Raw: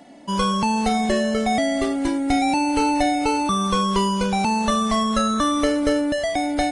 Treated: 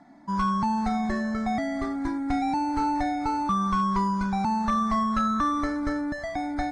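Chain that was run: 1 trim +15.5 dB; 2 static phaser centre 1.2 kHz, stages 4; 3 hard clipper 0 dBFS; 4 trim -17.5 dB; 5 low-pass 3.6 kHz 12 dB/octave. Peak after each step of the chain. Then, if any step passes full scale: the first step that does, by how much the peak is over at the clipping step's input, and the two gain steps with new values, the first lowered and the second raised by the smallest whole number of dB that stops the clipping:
+7.0 dBFS, +4.5 dBFS, 0.0 dBFS, -17.5 dBFS, -17.0 dBFS; step 1, 4.5 dB; step 1 +10.5 dB, step 4 -12.5 dB

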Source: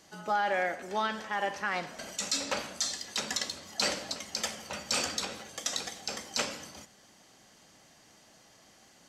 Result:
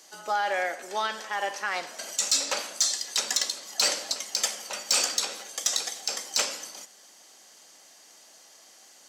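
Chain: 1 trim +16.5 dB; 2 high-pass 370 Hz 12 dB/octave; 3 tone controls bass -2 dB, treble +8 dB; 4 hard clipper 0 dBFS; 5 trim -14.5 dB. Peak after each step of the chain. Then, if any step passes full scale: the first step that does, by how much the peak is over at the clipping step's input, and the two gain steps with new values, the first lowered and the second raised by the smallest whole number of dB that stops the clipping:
+2.0 dBFS, +1.5 dBFS, +8.0 dBFS, 0.0 dBFS, -14.5 dBFS; step 1, 8.0 dB; step 1 +8.5 dB, step 5 -6.5 dB

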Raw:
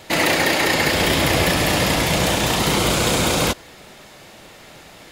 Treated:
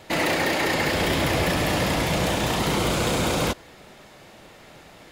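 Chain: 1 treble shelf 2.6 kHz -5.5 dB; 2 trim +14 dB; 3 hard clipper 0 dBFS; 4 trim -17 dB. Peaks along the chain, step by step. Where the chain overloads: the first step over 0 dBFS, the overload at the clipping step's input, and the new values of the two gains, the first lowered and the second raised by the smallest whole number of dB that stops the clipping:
-6.5 dBFS, +7.5 dBFS, 0.0 dBFS, -17.0 dBFS; step 2, 7.5 dB; step 2 +6 dB, step 4 -9 dB

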